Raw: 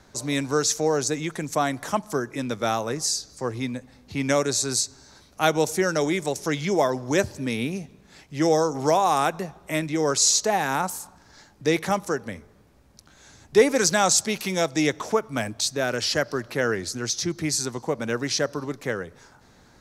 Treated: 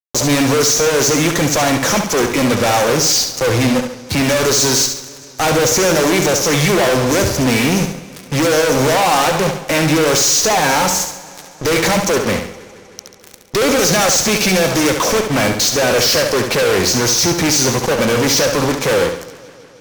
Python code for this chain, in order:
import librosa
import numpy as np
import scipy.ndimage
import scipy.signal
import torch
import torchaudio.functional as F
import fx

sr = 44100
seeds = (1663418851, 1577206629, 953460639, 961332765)

p1 = fx.high_shelf_res(x, sr, hz=7600.0, db=-7.5, q=3.0)
p2 = fx.small_body(p1, sr, hz=(520.0, 2300.0), ring_ms=45, db=9)
p3 = fx.fuzz(p2, sr, gain_db=43.0, gate_db=-40.0)
p4 = p3 + fx.echo_feedback(p3, sr, ms=69, feedback_pct=40, wet_db=-7, dry=0)
y = fx.echo_warbled(p4, sr, ms=156, feedback_pct=75, rate_hz=2.8, cents=72, wet_db=-22.0)